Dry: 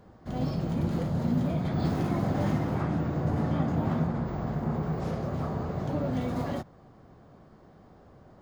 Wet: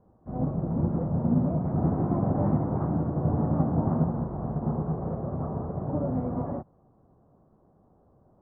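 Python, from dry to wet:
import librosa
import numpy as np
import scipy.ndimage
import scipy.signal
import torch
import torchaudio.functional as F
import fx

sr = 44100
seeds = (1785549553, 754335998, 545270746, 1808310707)

y = scipy.signal.sosfilt(scipy.signal.butter(4, 1100.0, 'lowpass', fs=sr, output='sos'), x)
y = fx.upward_expand(y, sr, threshold_db=-46.0, expansion=1.5)
y = y * 10.0 ** (4.0 / 20.0)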